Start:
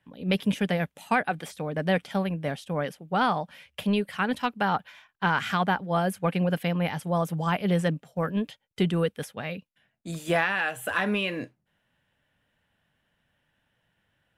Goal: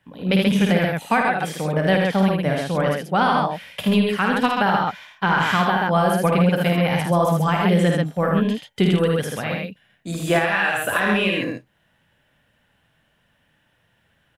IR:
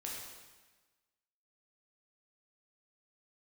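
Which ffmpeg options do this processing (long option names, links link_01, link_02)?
-af "aecho=1:1:52|78|133:0.531|0.631|0.668,alimiter=limit=-14.5dB:level=0:latency=1:release=176,volume=6dB"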